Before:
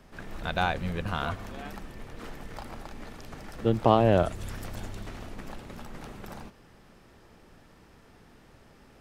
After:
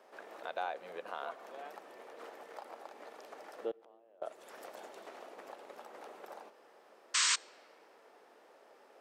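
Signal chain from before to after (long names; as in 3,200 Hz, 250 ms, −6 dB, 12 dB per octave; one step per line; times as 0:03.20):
high-pass filter 510 Hz 24 dB per octave
tilt shelving filter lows +9 dB, about 740 Hz
downward compressor 1.5 to 1, threshold −51 dBFS, peak gain reduction 12.5 dB
0:03.71–0:04.22: gate with flip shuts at −39 dBFS, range −31 dB
0:07.14–0:07.36: sound drawn into the spectrogram noise 940–8,600 Hz −30 dBFS
on a send: convolution reverb RT60 2.8 s, pre-delay 7 ms, DRR 23 dB
on the sum: level +1 dB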